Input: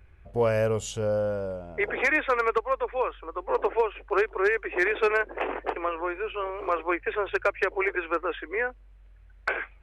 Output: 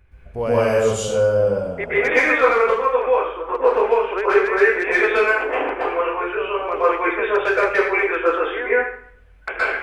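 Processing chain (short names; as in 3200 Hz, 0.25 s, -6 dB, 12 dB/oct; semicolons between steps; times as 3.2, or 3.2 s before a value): plate-style reverb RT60 0.61 s, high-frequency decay 0.9×, pre-delay 0.11 s, DRR -9 dB; gain -1 dB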